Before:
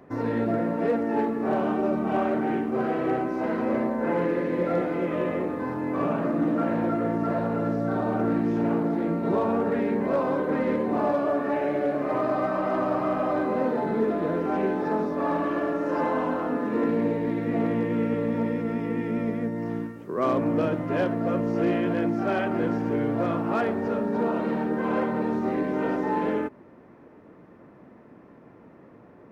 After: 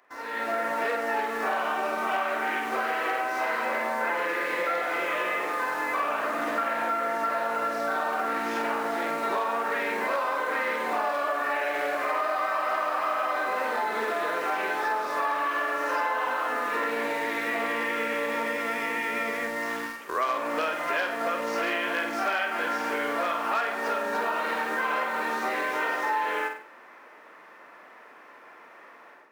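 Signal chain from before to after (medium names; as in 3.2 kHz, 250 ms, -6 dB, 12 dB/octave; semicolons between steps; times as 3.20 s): high-pass 1.3 kHz 12 dB/octave; in parallel at -9.5 dB: word length cut 8-bit, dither none; on the sum: level rider gain up to 13.5 dB; flutter echo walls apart 8.3 m, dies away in 0.38 s; compression 5:1, threshold -25 dBFS, peak gain reduction 12 dB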